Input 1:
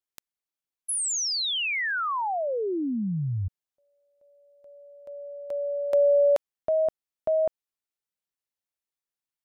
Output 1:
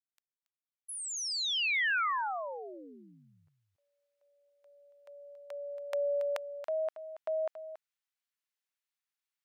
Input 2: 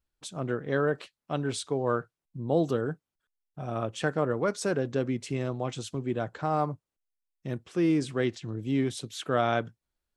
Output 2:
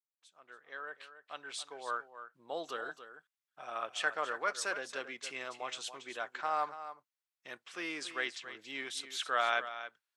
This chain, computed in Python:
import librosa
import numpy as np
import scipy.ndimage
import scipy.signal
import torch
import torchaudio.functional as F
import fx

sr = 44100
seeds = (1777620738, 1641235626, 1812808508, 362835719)

y = fx.fade_in_head(x, sr, length_s=2.93)
y = scipy.signal.sosfilt(scipy.signal.butter(2, 1400.0, 'highpass', fs=sr, output='sos'), y)
y = fx.high_shelf(y, sr, hz=4200.0, db=-9.0)
y = y + 10.0 ** (-12.0 / 20.0) * np.pad(y, (int(279 * sr / 1000.0), 0))[:len(y)]
y = F.gain(torch.from_numpy(y), 5.0).numpy()